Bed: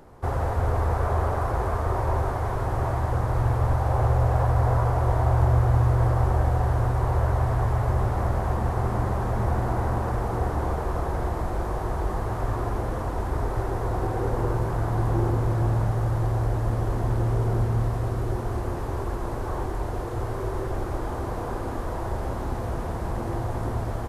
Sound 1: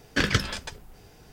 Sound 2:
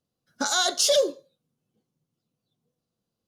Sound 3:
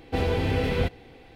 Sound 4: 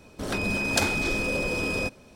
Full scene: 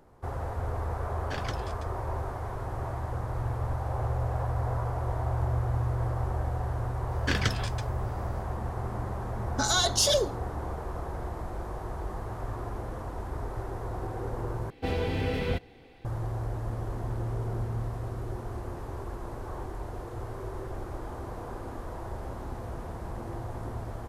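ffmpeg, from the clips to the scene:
ffmpeg -i bed.wav -i cue0.wav -i cue1.wav -i cue2.wav -filter_complex "[1:a]asplit=2[link_01][link_02];[0:a]volume=-8.5dB[link_03];[2:a]aecho=1:1:4.6:0.49[link_04];[link_03]asplit=2[link_05][link_06];[link_05]atrim=end=14.704[link_07];[3:a]atrim=end=1.35,asetpts=PTS-STARTPTS,volume=-4.5dB[link_08];[link_06]atrim=start=16.046[link_09];[link_01]atrim=end=1.32,asetpts=PTS-STARTPTS,volume=-15dB,afade=type=in:duration=0.004:curve=hsin,afade=type=out:start_time=1.316:duration=0.004:curve=hsin,adelay=1140[link_10];[link_02]atrim=end=1.32,asetpts=PTS-STARTPTS,volume=-5dB,afade=type=in:duration=0.004:curve=hsin,afade=type=out:start_time=1.316:duration=0.004:curve=hsin,adelay=7110[link_11];[link_04]atrim=end=3.27,asetpts=PTS-STARTPTS,volume=-3dB,afade=type=in:duration=0.004:curve=hsin,afade=type=out:start_time=3.266:duration=0.004:curve=hsin,adelay=9180[link_12];[link_07][link_08]acrossfade=duration=0.004:curve1=hsin:curve2=hsin[link_13];[link_13][link_09]acrossfade=duration=0.004:curve1=hsin:curve2=hsin[link_14];[link_14][link_10][link_11][link_12]amix=inputs=4:normalize=0" out.wav

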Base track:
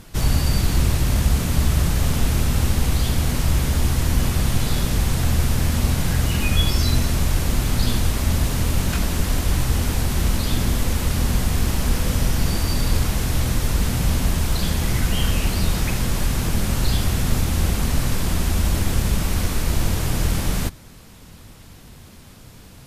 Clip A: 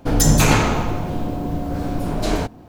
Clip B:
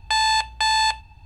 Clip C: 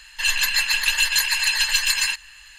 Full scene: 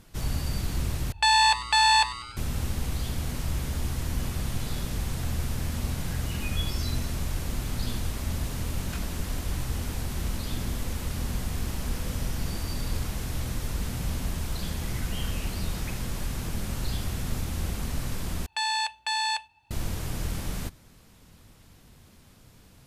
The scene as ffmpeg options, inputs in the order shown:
ffmpeg -i bed.wav -i cue0.wav -i cue1.wav -filter_complex "[2:a]asplit=2[link_01][link_02];[0:a]volume=-10.5dB[link_03];[link_01]asplit=7[link_04][link_05][link_06][link_07][link_08][link_09][link_10];[link_05]adelay=97,afreqshift=120,volume=-17dB[link_11];[link_06]adelay=194,afreqshift=240,volume=-21dB[link_12];[link_07]adelay=291,afreqshift=360,volume=-25dB[link_13];[link_08]adelay=388,afreqshift=480,volume=-29dB[link_14];[link_09]adelay=485,afreqshift=600,volume=-33.1dB[link_15];[link_10]adelay=582,afreqshift=720,volume=-37.1dB[link_16];[link_04][link_11][link_12][link_13][link_14][link_15][link_16]amix=inputs=7:normalize=0[link_17];[link_02]highpass=frequency=700:poles=1[link_18];[link_03]asplit=3[link_19][link_20][link_21];[link_19]atrim=end=1.124[link_22];[link_17]atrim=end=1.25,asetpts=PTS-STARTPTS,volume=-0.5dB[link_23];[link_20]atrim=start=2.366:end=18.464[link_24];[link_18]atrim=end=1.25,asetpts=PTS-STARTPTS,volume=-7dB[link_25];[link_21]atrim=start=19.706[link_26];[link_22][link_23]acrossfade=duration=0.004:curve1=hsin:curve2=hsin[link_27];[link_27][link_24]acrossfade=duration=0.004:curve1=hsin:curve2=hsin[link_28];[link_28][link_25]acrossfade=duration=0.004:curve1=hsin:curve2=hsin[link_29];[link_29][link_26]acrossfade=duration=0.004:curve1=hsin:curve2=hsin" out.wav

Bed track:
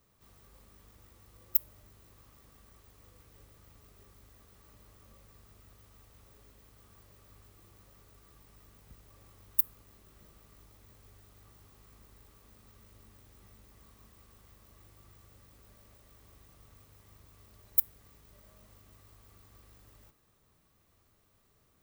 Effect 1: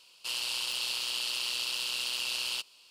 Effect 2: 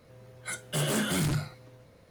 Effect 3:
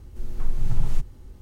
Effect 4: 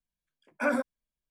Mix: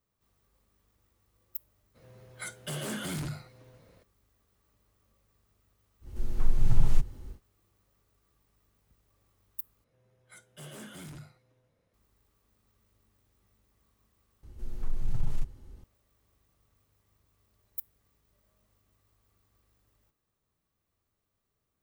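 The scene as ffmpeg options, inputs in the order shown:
ffmpeg -i bed.wav -i cue0.wav -i cue1.wav -i cue2.wav -filter_complex "[2:a]asplit=2[link_01][link_02];[3:a]asplit=2[link_03][link_04];[0:a]volume=-12.5dB[link_05];[link_01]alimiter=level_in=1.5dB:limit=-24dB:level=0:latency=1:release=468,volume=-1.5dB[link_06];[link_02]bandreject=frequency=4400:width=11[link_07];[link_04]acontrast=87[link_08];[link_05]asplit=3[link_09][link_10][link_11];[link_09]atrim=end=9.844[link_12];[link_07]atrim=end=2.1,asetpts=PTS-STARTPTS,volume=-17.5dB[link_13];[link_10]atrim=start=11.936:end=14.434[link_14];[link_08]atrim=end=1.41,asetpts=PTS-STARTPTS,volume=-13dB[link_15];[link_11]atrim=start=15.836[link_16];[link_06]atrim=end=2.1,asetpts=PTS-STARTPTS,volume=-2.5dB,afade=type=in:duration=0.02,afade=type=out:start_time=2.08:duration=0.02,adelay=1940[link_17];[link_03]atrim=end=1.41,asetpts=PTS-STARTPTS,afade=type=in:duration=0.1,afade=type=out:start_time=1.31:duration=0.1,adelay=6000[link_18];[link_12][link_13]acrossfade=duration=0.004:curve1=hsin:curve2=hsin[link_19];[link_19][link_14]acrossfade=duration=0.004:curve1=hsin:curve2=hsin[link_20];[link_20][link_15]acrossfade=duration=0.004:curve1=hsin:curve2=hsin[link_21];[link_21][link_16]acrossfade=duration=0.004:curve1=hsin:curve2=hsin[link_22];[link_22][link_17][link_18]amix=inputs=3:normalize=0" out.wav

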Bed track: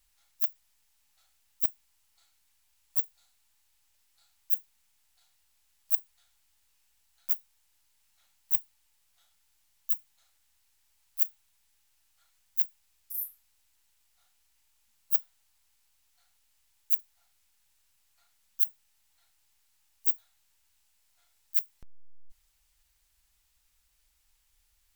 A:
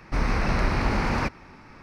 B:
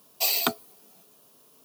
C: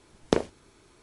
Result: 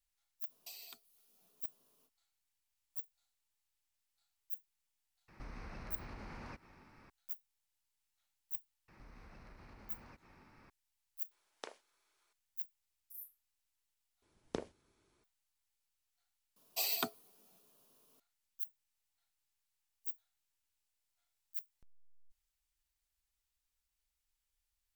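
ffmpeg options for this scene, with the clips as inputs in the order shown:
ffmpeg -i bed.wav -i cue0.wav -i cue1.wav -i cue2.wav -filter_complex "[2:a]asplit=2[link_01][link_02];[1:a]asplit=2[link_03][link_04];[3:a]asplit=2[link_05][link_06];[0:a]volume=-15.5dB[link_07];[link_01]acrossover=split=2200|7400[link_08][link_09][link_10];[link_08]acompressor=threshold=-55dB:ratio=4[link_11];[link_09]acompressor=threshold=-40dB:ratio=4[link_12];[link_10]acompressor=threshold=-40dB:ratio=4[link_13];[link_11][link_12][link_13]amix=inputs=3:normalize=0[link_14];[link_03]acompressor=threshold=-30dB:ratio=6:attack=2.4:release=251:knee=1:detection=peak[link_15];[link_04]acompressor=threshold=-40dB:ratio=6:attack=3.2:release=140:knee=1:detection=peak[link_16];[link_05]highpass=860[link_17];[link_07]asplit=2[link_18][link_19];[link_18]atrim=end=14.224[link_20];[link_06]atrim=end=1.02,asetpts=PTS-STARTPTS,volume=-17dB[link_21];[link_19]atrim=start=15.236[link_22];[link_14]atrim=end=1.64,asetpts=PTS-STARTPTS,volume=-15dB,afade=type=in:duration=0.05,afade=type=out:start_time=1.59:duration=0.05,adelay=460[link_23];[link_15]atrim=end=1.82,asetpts=PTS-STARTPTS,volume=-14dB,afade=type=in:duration=0.004:curve=hsin,afade=type=out:start_time=1.816:duration=0.004:curve=hsin,adelay=5280[link_24];[link_16]atrim=end=1.82,asetpts=PTS-STARTPTS,volume=-15dB,afade=type=in:duration=0.004:curve=hsin,afade=type=out:start_time=1.816:duration=0.004:curve=hsin,adelay=8880[link_25];[link_17]atrim=end=1.02,asetpts=PTS-STARTPTS,volume=-16.5dB,afade=type=in:duration=0.004:curve=hsin,afade=type=out:start_time=1.016:duration=0.004:curve=hsin,adelay=11310[link_26];[link_02]atrim=end=1.64,asetpts=PTS-STARTPTS,volume=-11.5dB,afade=type=in:duration=0.004:curve=hsin,afade=type=out:start_time=1.636:duration=0.004:curve=hsin,adelay=16560[link_27];[link_20][link_21]acrossfade=duration=0.004:curve1=hsin:curve2=hsin[link_28];[link_28][link_22]acrossfade=duration=0.004:curve1=hsin:curve2=hsin[link_29];[link_29][link_23][link_24][link_25][link_26][link_27]amix=inputs=6:normalize=0" out.wav

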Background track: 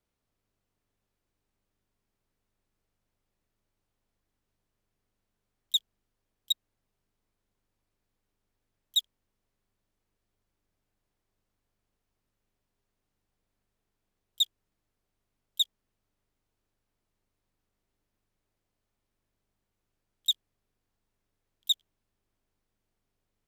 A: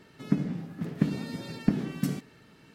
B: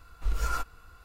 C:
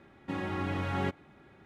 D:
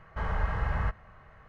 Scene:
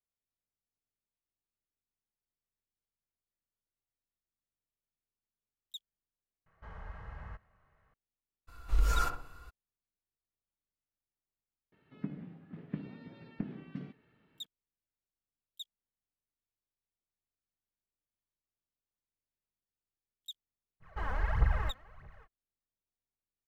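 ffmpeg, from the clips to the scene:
ffmpeg -i bed.wav -i cue0.wav -i cue1.wav -i cue2.wav -i cue3.wav -filter_complex "[4:a]asplit=2[link_01][link_02];[0:a]volume=-19dB[link_03];[2:a]asplit=2[link_04][link_05];[link_05]adelay=64,lowpass=frequency=970:poles=1,volume=-4dB,asplit=2[link_06][link_07];[link_07]adelay=64,lowpass=frequency=970:poles=1,volume=0.49,asplit=2[link_08][link_09];[link_09]adelay=64,lowpass=frequency=970:poles=1,volume=0.49,asplit=2[link_10][link_11];[link_11]adelay=64,lowpass=frequency=970:poles=1,volume=0.49,asplit=2[link_12][link_13];[link_13]adelay=64,lowpass=frequency=970:poles=1,volume=0.49,asplit=2[link_14][link_15];[link_15]adelay=64,lowpass=frequency=970:poles=1,volume=0.49[link_16];[link_04][link_06][link_08][link_10][link_12][link_14][link_16]amix=inputs=7:normalize=0[link_17];[1:a]lowpass=frequency=3200:width=0.5412,lowpass=frequency=3200:width=1.3066[link_18];[link_02]aphaser=in_gain=1:out_gain=1:delay=4.1:decay=0.72:speed=1.6:type=triangular[link_19];[link_03]asplit=2[link_20][link_21];[link_20]atrim=end=6.464[link_22];[link_01]atrim=end=1.48,asetpts=PTS-STARTPTS,volume=-17dB[link_23];[link_21]atrim=start=7.936[link_24];[link_17]atrim=end=1.04,asetpts=PTS-STARTPTS,volume=-1dB,afade=type=in:duration=0.02,afade=type=out:start_time=1.02:duration=0.02,adelay=8470[link_25];[link_18]atrim=end=2.74,asetpts=PTS-STARTPTS,volume=-13.5dB,afade=type=in:duration=0.004:curve=hsin,afade=type=out:start_time=2.736:duration=0.004:curve=hsin,adelay=11720[link_26];[link_19]atrim=end=1.48,asetpts=PTS-STARTPTS,volume=-6.5dB,afade=type=in:duration=0.05,afade=type=out:start_time=1.43:duration=0.05,adelay=20800[link_27];[link_22][link_23]acrossfade=duration=0.004:curve1=hsin:curve2=hsin[link_28];[link_28][link_24]acrossfade=duration=0.004:curve1=hsin:curve2=hsin[link_29];[link_29][link_25][link_26][link_27]amix=inputs=4:normalize=0" out.wav

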